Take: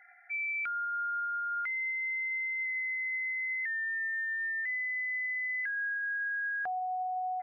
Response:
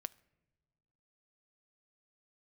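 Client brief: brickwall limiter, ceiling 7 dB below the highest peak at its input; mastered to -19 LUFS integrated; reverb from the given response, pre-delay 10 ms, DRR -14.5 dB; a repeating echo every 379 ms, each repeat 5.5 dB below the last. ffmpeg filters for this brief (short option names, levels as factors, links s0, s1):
-filter_complex "[0:a]alimiter=level_in=4.22:limit=0.0631:level=0:latency=1,volume=0.237,aecho=1:1:379|758|1137|1516|1895|2274|2653:0.531|0.281|0.149|0.079|0.0419|0.0222|0.0118,asplit=2[s0][s1];[1:a]atrim=start_sample=2205,adelay=10[s2];[s1][s2]afir=irnorm=-1:irlink=0,volume=7.94[s3];[s0][s3]amix=inputs=2:normalize=0,volume=1.5"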